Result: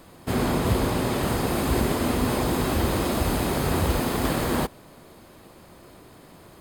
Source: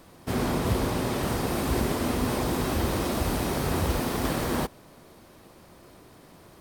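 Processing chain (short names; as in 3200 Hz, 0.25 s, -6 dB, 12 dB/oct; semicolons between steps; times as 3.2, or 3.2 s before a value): notch 5700 Hz, Q 8.4; gain +3 dB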